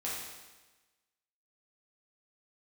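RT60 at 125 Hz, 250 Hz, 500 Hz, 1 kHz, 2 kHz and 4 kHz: 1.2 s, 1.2 s, 1.2 s, 1.2 s, 1.2 s, 1.2 s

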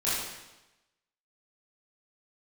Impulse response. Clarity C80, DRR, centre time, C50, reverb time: 2.0 dB, -11.0 dB, 83 ms, -1.5 dB, 1.0 s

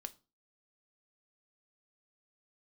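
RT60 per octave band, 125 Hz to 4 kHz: 0.40 s, 0.40 s, 0.35 s, 0.35 s, 0.25 s, 0.25 s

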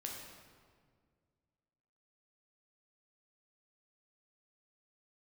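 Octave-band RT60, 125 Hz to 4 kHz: 2.5 s, 2.3 s, 2.1 s, 1.7 s, 1.5 s, 1.2 s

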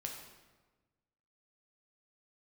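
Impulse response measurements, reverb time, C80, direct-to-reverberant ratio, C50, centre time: 1.3 s, 6.0 dB, 0.5 dB, 4.0 dB, 42 ms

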